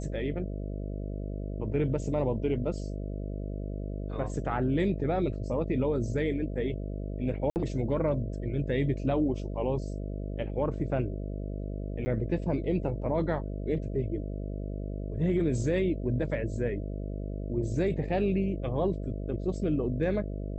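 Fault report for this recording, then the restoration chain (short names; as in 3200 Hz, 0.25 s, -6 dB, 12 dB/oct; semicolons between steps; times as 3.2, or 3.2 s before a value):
buzz 50 Hz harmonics 13 -35 dBFS
7.5–7.56 gap 59 ms
12.05–12.06 gap 10 ms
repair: de-hum 50 Hz, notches 13; interpolate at 7.5, 59 ms; interpolate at 12.05, 10 ms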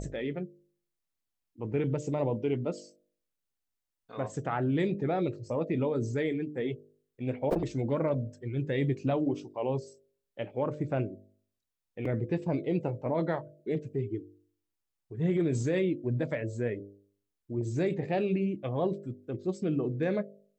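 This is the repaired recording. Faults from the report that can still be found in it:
none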